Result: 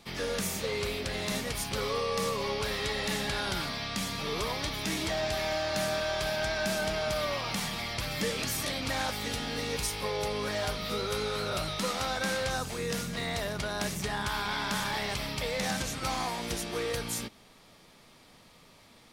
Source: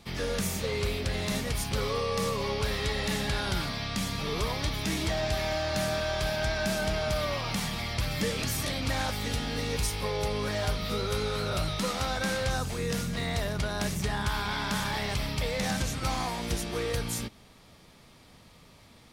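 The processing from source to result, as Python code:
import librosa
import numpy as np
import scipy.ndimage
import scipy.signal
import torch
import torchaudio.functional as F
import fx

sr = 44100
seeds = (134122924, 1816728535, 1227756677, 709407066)

y = fx.peak_eq(x, sr, hz=63.0, db=-9.5, octaves=2.6)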